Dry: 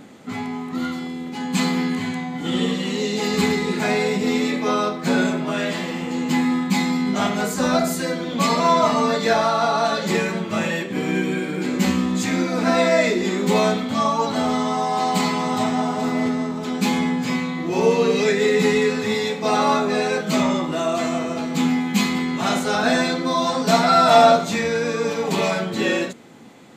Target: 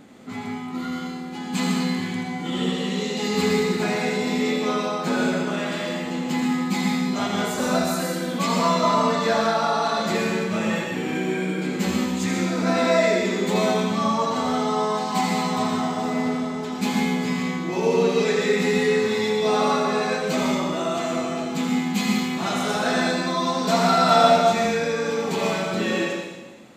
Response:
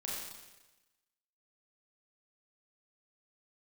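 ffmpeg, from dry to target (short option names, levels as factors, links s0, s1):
-filter_complex "[0:a]asplit=2[s0][s1];[1:a]atrim=start_sample=2205,adelay=82[s2];[s1][s2]afir=irnorm=-1:irlink=0,volume=0.841[s3];[s0][s3]amix=inputs=2:normalize=0,volume=0.562"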